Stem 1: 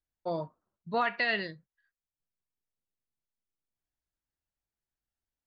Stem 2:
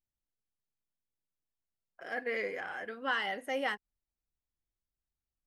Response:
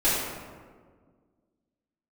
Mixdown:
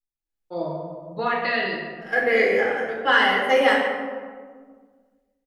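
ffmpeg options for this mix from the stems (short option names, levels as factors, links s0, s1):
-filter_complex "[0:a]adelay=250,volume=0.224,asplit=2[s0][s1];[s1]volume=0.398[s2];[1:a]agate=range=0.282:threshold=0.0112:ratio=16:detection=peak,volume=0.794,asplit=2[s3][s4];[s4]volume=0.355[s5];[2:a]atrim=start_sample=2205[s6];[s2][s5]amix=inputs=2:normalize=0[s7];[s7][s6]afir=irnorm=-1:irlink=0[s8];[s0][s3][s8]amix=inputs=3:normalize=0,dynaudnorm=f=110:g=9:m=3.55"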